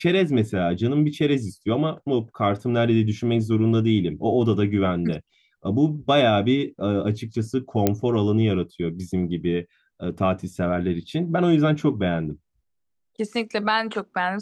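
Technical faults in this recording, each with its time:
0:07.87: click −5 dBFS

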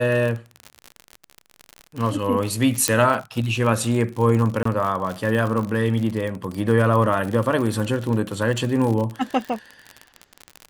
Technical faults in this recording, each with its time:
surface crackle 48 per second −25 dBFS
0:02.88: click −2 dBFS
0:04.63–0:04.65: drop-out 24 ms

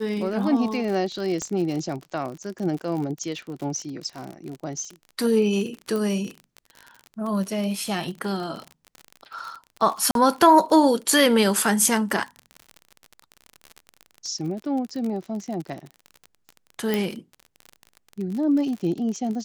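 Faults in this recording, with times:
surface crackle 43 per second −30 dBFS
0:01.42: click −17 dBFS
0:05.96: click
0:10.11–0:10.15: drop-out 42 ms
0:16.94: click

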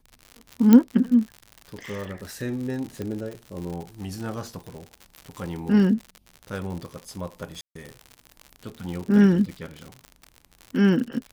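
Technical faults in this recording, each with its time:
surface crackle 94 per second −31 dBFS
0:00.73: click −4 dBFS
0:03.02: click −19 dBFS
0:07.61–0:07.75: drop-out 144 ms

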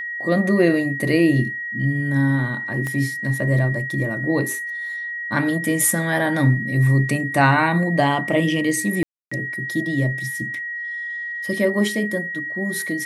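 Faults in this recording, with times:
whistle 1,900 Hz −26 dBFS
0:02.87: click −15 dBFS
0:09.03–0:09.31: drop-out 285 ms

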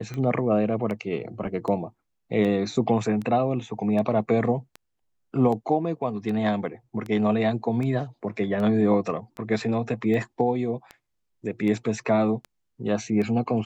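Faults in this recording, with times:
scratch tick 78 rpm −22 dBFS

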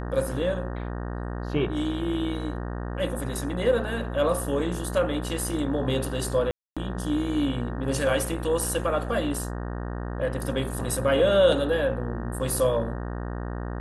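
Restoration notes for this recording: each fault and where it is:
mains buzz 60 Hz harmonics 31 −32 dBFS
0:06.51–0:06.77: drop-out 256 ms

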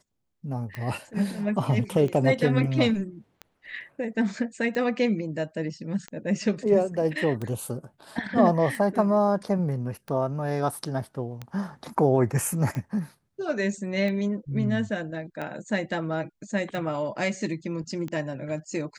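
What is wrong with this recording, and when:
scratch tick 45 rpm −21 dBFS

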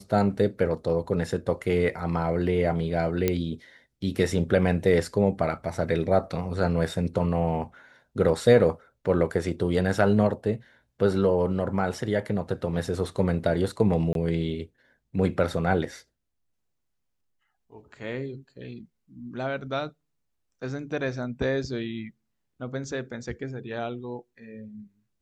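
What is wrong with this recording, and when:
0:03.28: click −9 dBFS
0:14.13–0:14.15: drop-out 22 ms

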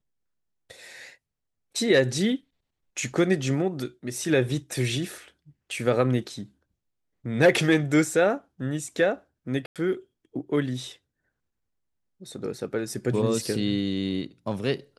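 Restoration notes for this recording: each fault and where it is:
0:09.66–0:09.76: drop-out 97 ms

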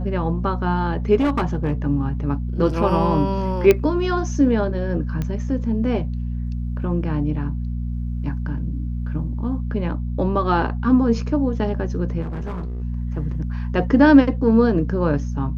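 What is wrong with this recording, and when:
mains hum 60 Hz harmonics 4 −25 dBFS
0:01.15–0:01.74: clipping −15 dBFS
0:03.71: click −3 dBFS
0:05.22: click −14 dBFS
0:12.21–0:12.82: clipping −24.5 dBFS

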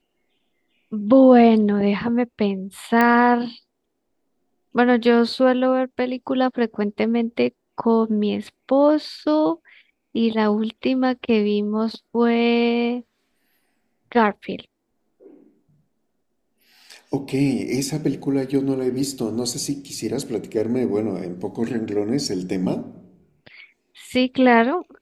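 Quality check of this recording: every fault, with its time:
0:03.01: click −7 dBFS

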